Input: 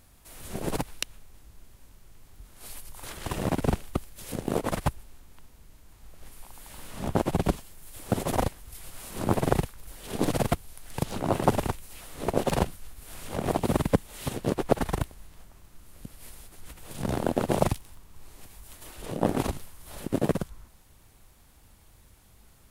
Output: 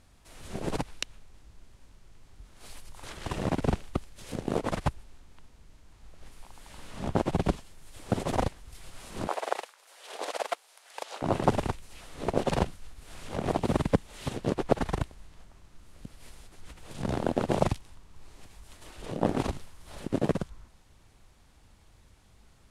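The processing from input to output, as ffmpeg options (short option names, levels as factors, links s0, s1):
-filter_complex "[0:a]asettb=1/sr,asplit=3[s0][s1][s2];[s0]atrim=end=9.274[s3];[s1]atrim=start=9.27:end=11.22,asetpts=PTS-STARTPTS,afade=t=in:d=0.004:c=qsin,afade=t=out:st=1.946:d=0.004:c=qsin,highpass=f=540:w=0.5412,highpass=f=540:w=1.3066[s4];[s2]atrim=start=11.216[s5];[s3][s4]acrossfade=d=0.004:c1=hsin:c2=qsin[s6];[s6][s5]acrossfade=d=0.004:c1=qsin:c2=hsin,lowpass=7200,volume=0.841"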